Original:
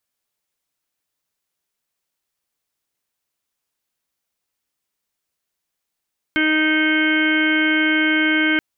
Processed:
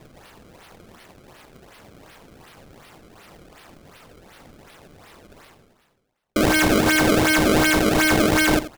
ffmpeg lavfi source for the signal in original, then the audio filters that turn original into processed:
-f lavfi -i "aevalsrc='0.119*sin(2*PI*311*t)+0.0266*sin(2*PI*622*t)+0.0133*sin(2*PI*933*t)+0.0188*sin(2*PI*1244*t)+0.106*sin(2*PI*1555*t)+0.0188*sin(2*PI*1866*t)+0.0944*sin(2*PI*2177*t)+0.0178*sin(2*PI*2488*t)+0.015*sin(2*PI*2799*t)+0.0447*sin(2*PI*3110*t)':d=2.23:s=44100"
-af "areverse,acompressor=mode=upward:threshold=0.0794:ratio=2.5,areverse,acrusher=samples=28:mix=1:aa=0.000001:lfo=1:lforange=44.8:lforate=2.7,aecho=1:1:85:0.2"

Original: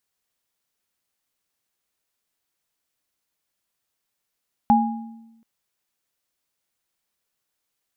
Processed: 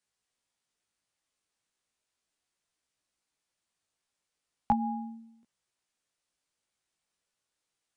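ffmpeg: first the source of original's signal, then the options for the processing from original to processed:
-f lavfi -i "aevalsrc='0.188*pow(10,-3*t/1.06)*sin(2*PI*227*t)+0.266*pow(10,-3*t/0.62)*sin(2*PI*823*t)':d=0.73:s=44100"
-filter_complex "[0:a]flanger=delay=16:depth=2.7:speed=0.36,aresample=22050,aresample=44100,acrossover=split=120|630[s0][s1][s2];[s1]acompressor=threshold=0.0224:ratio=6[s3];[s0][s3][s2]amix=inputs=3:normalize=0"

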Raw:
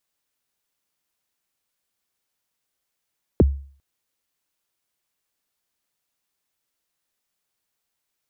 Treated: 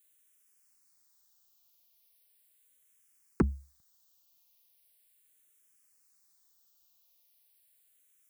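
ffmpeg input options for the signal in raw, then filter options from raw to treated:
-f lavfi -i "aevalsrc='0.398*pow(10,-3*t/0.46)*sin(2*PI*(530*0.026/log(69/530)*(exp(log(69/530)*min(t,0.026)/0.026)-1)+69*max(t-0.026,0)))':d=0.4:s=44100"
-filter_complex "[0:a]asoftclip=type=tanh:threshold=0.158,crystalizer=i=3:c=0,asplit=2[s0][s1];[s1]afreqshift=-0.38[s2];[s0][s2]amix=inputs=2:normalize=1"

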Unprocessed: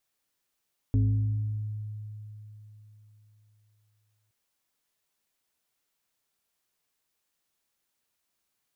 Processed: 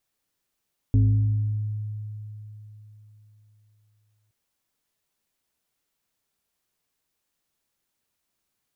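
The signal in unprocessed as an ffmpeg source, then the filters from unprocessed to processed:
-f lavfi -i "aevalsrc='0.112*pow(10,-3*t/3.72)*sin(2*PI*106*t+0.72*pow(10,-3*t/1.83)*sin(2*PI*1.51*106*t))':d=3.37:s=44100"
-af "lowshelf=f=380:g=5.5"

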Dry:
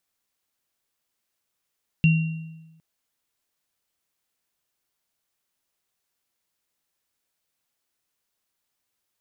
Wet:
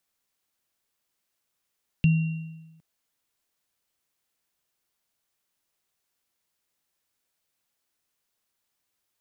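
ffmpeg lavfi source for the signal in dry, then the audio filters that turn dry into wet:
-f lavfi -i "aevalsrc='0.237*pow(10,-3*t/1.11)*sin(2*PI*161*t)+0.0841*pow(10,-3*t/0.77)*sin(2*PI*2750*t)':d=0.76:s=44100"
-filter_complex "[0:a]acrossover=split=210[s0][s1];[s1]acompressor=threshold=0.0224:ratio=4[s2];[s0][s2]amix=inputs=2:normalize=0"

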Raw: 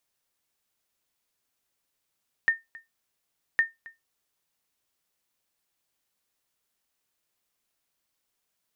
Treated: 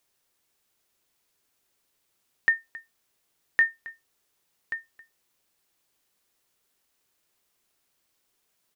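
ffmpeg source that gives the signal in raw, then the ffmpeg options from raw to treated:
-f lavfi -i "aevalsrc='0.211*(sin(2*PI*1820*mod(t,1.11))*exp(-6.91*mod(t,1.11)/0.18)+0.075*sin(2*PI*1820*max(mod(t,1.11)-0.27,0))*exp(-6.91*max(mod(t,1.11)-0.27,0)/0.18))':d=2.22:s=44100"
-filter_complex "[0:a]equalizer=f=380:t=o:w=0.43:g=4,asplit=2[s0][s1];[s1]alimiter=limit=0.0668:level=0:latency=1,volume=0.841[s2];[s0][s2]amix=inputs=2:normalize=0,aecho=1:1:1132:0.282"

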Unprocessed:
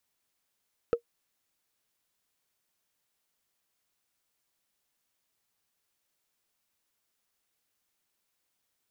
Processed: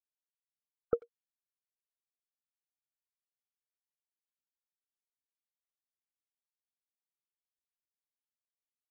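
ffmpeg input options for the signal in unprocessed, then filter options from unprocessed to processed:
-f lavfi -i "aevalsrc='0.158*pow(10,-3*t/0.09)*sin(2*PI*471*t)+0.0422*pow(10,-3*t/0.027)*sin(2*PI*1298.5*t)+0.0112*pow(10,-3*t/0.012)*sin(2*PI*2545.3*t)+0.00299*pow(10,-3*t/0.007)*sin(2*PI*4207.4*t)+0.000794*pow(10,-3*t/0.004)*sin(2*PI*6283.1*t)':d=0.45:s=44100"
-filter_complex "[0:a]afftfilt=real='re*gte(hypot(re,im),0.02)':imag='im*gte(hypot(re,im),0.02)':win_size=1024:overlap=0.75,asplit=2[s0][s1];[s1]adelay=90,highpass=300,lowpass=3400,asoftclip=type=hard:threshold=0.0596,volume=0.0631[s2];[s0][s2]amix=inputs=2:normalize=0"

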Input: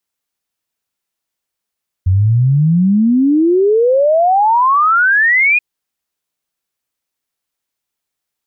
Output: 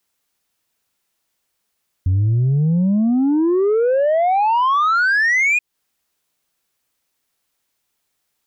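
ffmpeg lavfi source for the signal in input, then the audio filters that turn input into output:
-f lavfi -i "aevalsrc='0.398*clip(min(t,3.53-t)/0.01,0,1)*sin(2*PI*89*3.53/log(2500/89)*(exp(log(2500/89)*t/3.53)-1))':d=3.53:s=44100"
-af "acontrast=82,alimiter=limit=0.211:level=0:latency=1:release=220"

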